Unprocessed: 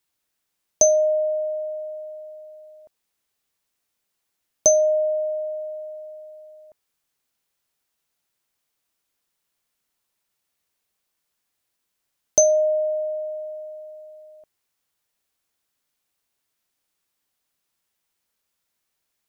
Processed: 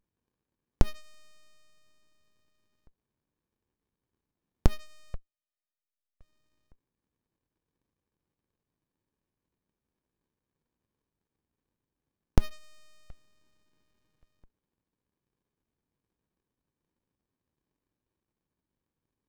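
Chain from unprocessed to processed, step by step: 5.14–6.21 tube stage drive 43 dB, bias 0.5; 13.1–14.23 graphic EQ 125/250/500/1000/2000/4000 Hz +4/-8/-8/+4/+7/+6 dB; running maximum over 65 samples; gain -2 dB

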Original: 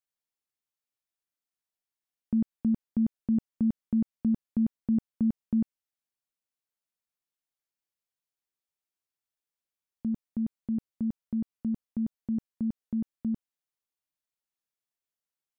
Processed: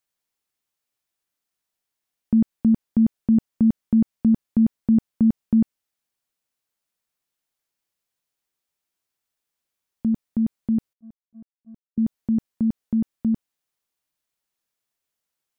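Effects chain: 10.93–11.98 gate -25 dBFS, range -45 dB; gain +8.5 dB

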